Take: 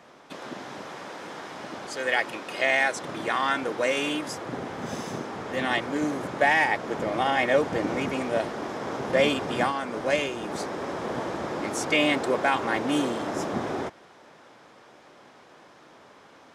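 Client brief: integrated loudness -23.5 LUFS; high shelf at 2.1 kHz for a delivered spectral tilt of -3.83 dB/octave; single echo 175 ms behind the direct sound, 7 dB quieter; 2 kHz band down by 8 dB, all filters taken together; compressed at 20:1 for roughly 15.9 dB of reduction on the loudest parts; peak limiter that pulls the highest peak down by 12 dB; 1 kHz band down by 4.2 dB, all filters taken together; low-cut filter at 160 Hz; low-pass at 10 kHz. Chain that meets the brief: high-pass 160 Hz; low-pass 10 kHz; peaking EQ 1 kHz -3.5 dB; peaking EQ 2 kHz -5.5 dB; treble shelf 2.1 kHz -5.5 dB; compression 20:1, threshold -34 dBFS; peak limiter -36 dBFS; delay 175 ms -7 dB; trim +20 dB

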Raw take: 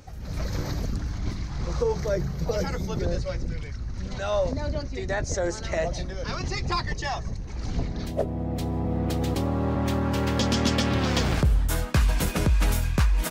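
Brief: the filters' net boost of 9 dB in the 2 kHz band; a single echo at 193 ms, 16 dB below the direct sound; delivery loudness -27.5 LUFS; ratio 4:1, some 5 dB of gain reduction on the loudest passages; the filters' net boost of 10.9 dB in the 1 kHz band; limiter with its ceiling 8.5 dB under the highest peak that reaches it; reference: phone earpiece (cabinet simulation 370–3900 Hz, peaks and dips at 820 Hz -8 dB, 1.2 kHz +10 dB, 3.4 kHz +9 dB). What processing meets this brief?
peaking EQ 1 kHz +8.5 dB; peaking EQ 2 kHz +6.5 dB; compression 4:1, threshold -22 dBFS; peak limiter -18.5 dBFS; cabinet simulation 370–3900 Hz, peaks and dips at 820 Hz -8 dB, 1.2 kHz +10 dB, 3.4 kHz +9 dB; delay 193 ms -16 dB; trim +2.5 dB

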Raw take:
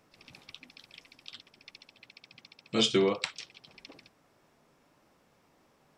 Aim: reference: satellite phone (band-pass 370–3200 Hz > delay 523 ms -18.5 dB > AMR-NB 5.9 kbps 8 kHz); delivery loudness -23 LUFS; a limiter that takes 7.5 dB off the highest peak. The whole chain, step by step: peak limiter -19.5 dBFS; band-pass 370–3200 Hz; delay 523 ms -18.5 dB; trim +14.5 dB; AMR-NB 5.9 kbps 8 kHz

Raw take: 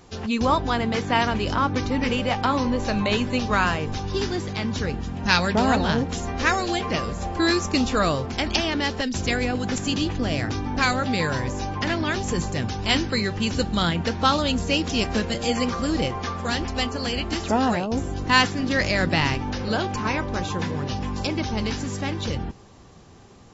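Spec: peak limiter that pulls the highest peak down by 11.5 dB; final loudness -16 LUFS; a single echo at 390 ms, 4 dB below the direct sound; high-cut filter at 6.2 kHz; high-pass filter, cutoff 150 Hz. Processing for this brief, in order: high-pass 150 Hz; low-pass 6.2 kHz; peak limiter -14 dBFS; delay 390 ms -4 dB; trim +9 dB

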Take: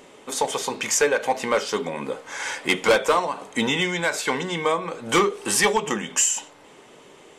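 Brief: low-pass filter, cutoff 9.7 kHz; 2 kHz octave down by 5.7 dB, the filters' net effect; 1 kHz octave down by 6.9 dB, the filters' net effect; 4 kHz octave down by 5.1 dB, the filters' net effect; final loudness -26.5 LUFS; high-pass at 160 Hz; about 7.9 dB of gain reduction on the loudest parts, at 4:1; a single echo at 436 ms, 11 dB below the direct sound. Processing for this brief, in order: high-pass 160 Hz; low-pass 9.7 kHz; peaking EQ 1 kHz -7.5 dB; peaking EQ 2 kHz -3.5 dB; peaking EQ 4 kHz -5 dB; compression 4:1, threshold -26 dBFS; delay 436 ms -11 dB; trim +4 dB

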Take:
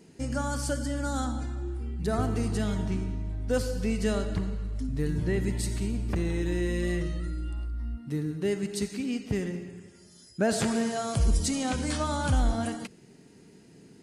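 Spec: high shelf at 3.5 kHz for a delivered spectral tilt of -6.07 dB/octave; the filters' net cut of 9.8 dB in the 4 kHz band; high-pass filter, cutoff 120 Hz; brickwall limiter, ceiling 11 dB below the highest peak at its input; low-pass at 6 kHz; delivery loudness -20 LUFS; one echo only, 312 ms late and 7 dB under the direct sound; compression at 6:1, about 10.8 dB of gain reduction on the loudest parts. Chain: high-pass 120 Hz; low-pass 6 kHz; treble shelf 3.5 kHz -5.5 dB; peaking EQ 4 kHz -8 dB; compression 6:1, threshold -35 dBFS; peak limiter -36.5 dBFS; delay 312 ms -7 dB; trim +24 dB

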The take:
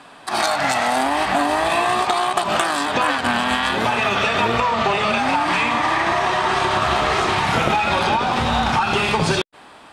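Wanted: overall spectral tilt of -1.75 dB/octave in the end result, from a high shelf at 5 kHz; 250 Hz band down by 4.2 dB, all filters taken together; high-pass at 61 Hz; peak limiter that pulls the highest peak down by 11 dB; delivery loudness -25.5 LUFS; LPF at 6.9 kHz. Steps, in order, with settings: high-pass 61 Hz; low-pass 6.9 kHz; peaking EQ 250 Hz -5.5 dB; treble shelf 5 kHz -5 dB; trim -1.5 dB; peak limiter -17 dBFS

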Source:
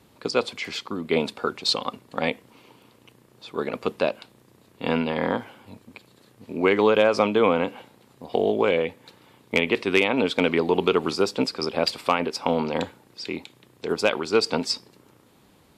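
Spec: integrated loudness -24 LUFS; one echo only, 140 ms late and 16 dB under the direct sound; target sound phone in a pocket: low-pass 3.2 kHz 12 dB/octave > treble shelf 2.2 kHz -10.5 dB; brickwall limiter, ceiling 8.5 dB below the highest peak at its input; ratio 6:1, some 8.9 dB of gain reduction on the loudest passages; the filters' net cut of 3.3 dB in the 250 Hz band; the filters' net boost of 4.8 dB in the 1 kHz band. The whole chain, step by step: peaking EQ 250 Hz -4.5 dB; peaking EQ 1 kHz +8.5 dB; compression 6:1, threshold -21 dBFS; peak limiter -14.5 dBFS; low-pass 3.2 kHz 12 dB/octave; treble shelf 2.2 kHz -10.5 dB; delay 140 ms -16 dB; trim +8 dB

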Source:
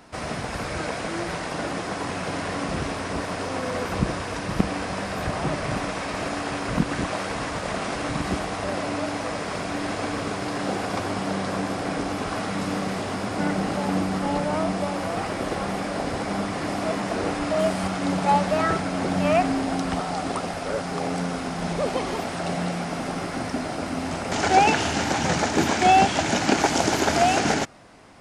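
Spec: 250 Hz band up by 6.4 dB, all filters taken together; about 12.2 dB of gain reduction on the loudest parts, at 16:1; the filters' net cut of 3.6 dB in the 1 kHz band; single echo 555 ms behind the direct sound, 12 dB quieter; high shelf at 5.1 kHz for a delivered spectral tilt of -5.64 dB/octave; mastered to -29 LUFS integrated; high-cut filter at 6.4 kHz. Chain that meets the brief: low-pass 6.4 kHz; peaking EQ 250 Hz +8.5 dB; peaking EQ 1 kHz -6 dB; treble shelf 5.1 kHz -5.5 dB; compression 16:1, threshold -23 dBFS; delay 555 ms -12 dB; trim -1 dB

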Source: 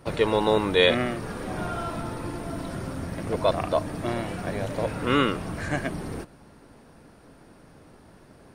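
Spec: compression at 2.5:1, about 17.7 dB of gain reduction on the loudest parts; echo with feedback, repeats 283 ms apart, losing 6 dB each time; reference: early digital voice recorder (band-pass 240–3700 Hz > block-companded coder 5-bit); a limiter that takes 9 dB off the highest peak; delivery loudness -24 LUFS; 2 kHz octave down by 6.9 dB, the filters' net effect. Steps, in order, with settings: peaking EQ 2 kHz -8.5 dB; compression 2.5:1, threshold -45 dBFS; peak limiter -35 dBFS; band-pass 240–3700 Hz; feedback delay 283 ms, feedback 50%, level -6 dB; block-companded coder 5-bit; trim +23 dB

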